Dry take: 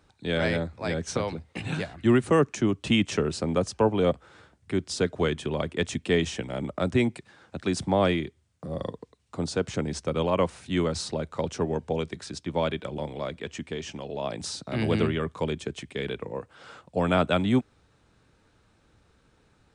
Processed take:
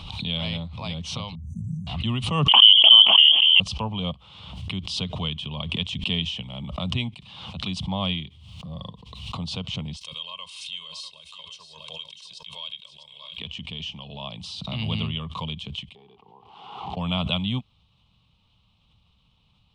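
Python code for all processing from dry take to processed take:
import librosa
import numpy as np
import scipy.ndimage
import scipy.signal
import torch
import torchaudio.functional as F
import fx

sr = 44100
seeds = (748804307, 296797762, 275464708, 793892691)

y = fx.chain(x, sr, fx.brickwall_bandstop(low_hz=260.0, high_hz=5800.0),
    fx.high_shelf(hz=7400.0, db=-7.0),
    fx.pre_swell(db_per_s=24.0), at=(1.35, 1.87))
y = fx.chain(y, sr, fx.freq_invert(carrier_hz=3300),
    fx.highpass(hz=300.0, slope=24),
    fx.sustainer(db_per_s=23.0), at=(2.48, 3.6))
y = fx.chain(y, sr, fx.differentiator(),
    fx.comb(ms=1.9, depth=0.82),
    fx.echo_single(ms=646, db=-12.0), at=(9.96, 13.38))
y = fx.chain(y, sr, fx.delta_mod(bps=64000, step_db=-43.0),
    fx.double_bandpass(hz=560.0, octaves=1.0), at=(15.95, 16.97))
y = fx.curve_eq(y, sr, hz=(190.0, 350.0, 1100.0, 1600.0, 3000.0, 6900.0), db=(0, -20, -1, -24, 11, -14))
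y = fx.pre_swell(y, sr, db_per_s=46.0)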